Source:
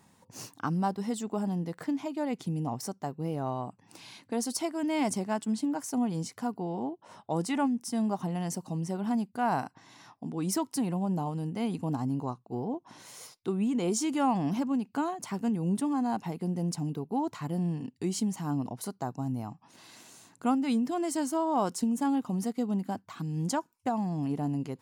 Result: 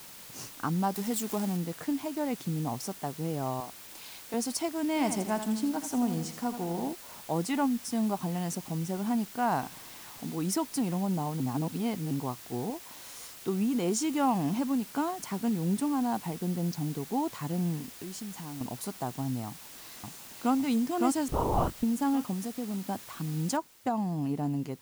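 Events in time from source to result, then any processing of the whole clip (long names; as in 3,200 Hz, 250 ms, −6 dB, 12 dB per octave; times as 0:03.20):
0:00.94–0:01.57: spike at every zero crossing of −27.5 dBFS
0:03.60–0:04.34: high-pass filter 580 Hz 6 dB per octave
0:04.88–0:06.93: feedback echo at a low word length 82 ms, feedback 55%, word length 8 bits, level −9 dB
0:09.61–0:10.34: linear delta modulator 32 kbit/s, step −46.5 dBFS
0:11.40–0:12.11: reverse
0:12.70–0:13.35: low-shelf EQ 260 Hz −11.5 dB
0:16.15–0:17.08: bad sample-rate conversion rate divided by 4×, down filtered, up hold
0:17.82–0:18.61: downward compressor 4 to 1, threshold −39 dBFS
0:19.47–0:20.55: delay throw 560 ms, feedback 40%, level −1 dB
0:21.28–0:21.83: linear-prediction vocoder at 8 kHz whisper
0:22.33–0:22.87: downward compressor 2 to 1, threshold −34 dBFS
0:23.57: noise floor change −48 dB −59 dB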